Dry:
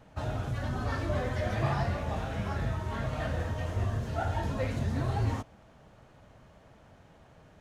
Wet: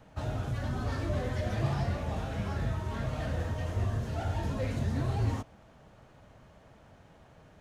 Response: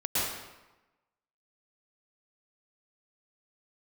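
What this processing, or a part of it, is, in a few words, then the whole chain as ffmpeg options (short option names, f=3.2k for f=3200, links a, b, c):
one-band saturation: -filter_complex "[0:a]acrossover=split=520|3800[a][b][c];[b]asoftclip=type=tanh:threshold=-39dB[d];[a][d][c]amix=inputs=3:normalize=0"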